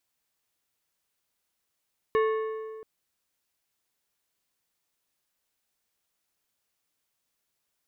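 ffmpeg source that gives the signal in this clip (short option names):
-f lavfi -i "aevalsrc='0.1*pow(10,-3*t/1.95)*sin(2*PI*439*t)+0.0473*pow(10,-3*t/1.481)*sin(2*PI*1097.5*t)+0.0224*pow(10,-3*t/1.287)*sin(2*PI*1756*t)+0.0106*pow(10,-3*t/1.203)*sin(2*PI*2195*t)+0.00501*pow(10,-3*t/1.112)*sin(2*PI*2853.5*t)+0.00237*pow(10,-3*t/1.026)*sin(2*PI*3731.5*t)':d=0.68:s=44100"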